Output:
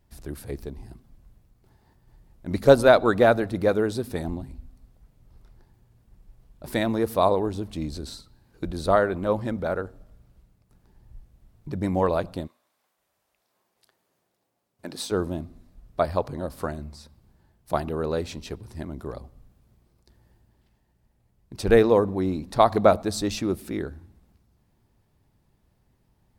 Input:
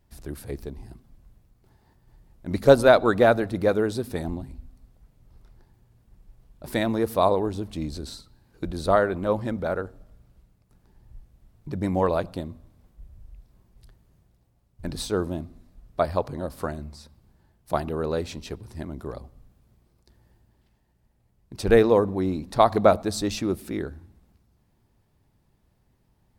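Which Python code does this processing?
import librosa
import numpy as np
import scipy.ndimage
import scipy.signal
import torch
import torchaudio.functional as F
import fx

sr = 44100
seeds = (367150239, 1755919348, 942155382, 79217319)

y = fx.highpass(x, sr, hz=fx.line((12.46, 1100.0), (15.1, 260.0)), slope=12, at=(12.46, 15.1), fade=0.02)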